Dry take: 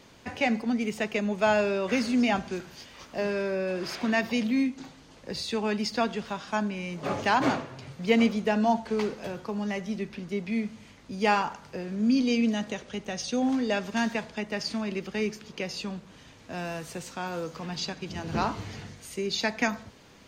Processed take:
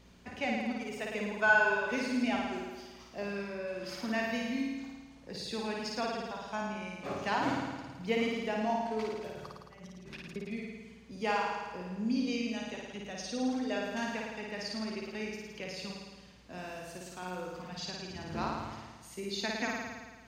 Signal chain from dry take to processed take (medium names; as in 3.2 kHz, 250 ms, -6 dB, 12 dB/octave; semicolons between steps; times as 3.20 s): 1.21–1.78 s: small resonant body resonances 1/1.5 kHz, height 14 dB -> 17 dB, ringing for 45 ms; 9.30–10.36 s: compressor with a negative ratio -43 dBFS, ratio -1; reverb removal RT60 1.3 s; hum 60 Hz, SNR 22 dB; on a send: flutter echo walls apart 9.4 m, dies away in 1.4 s; on the sum: trim -9 dB